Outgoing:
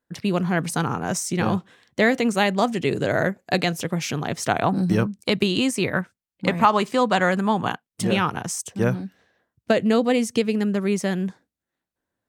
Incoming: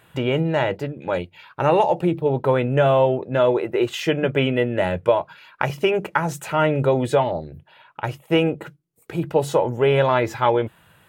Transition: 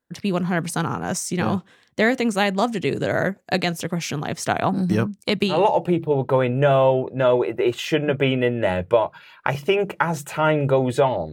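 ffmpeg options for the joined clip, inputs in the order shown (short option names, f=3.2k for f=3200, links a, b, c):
-filter_complex "[0:a]apad=whole_dur=11.32,atrim=end=11.32,atrim=end=5.61,asetpts=PTS-STARTPTS[a];[1:a]atrim=start=1.62:end=7.47,asetpts=PTS-STARTPTS[b];[a][b]acrossfade=d=0.14:c1=tri:c2=tri"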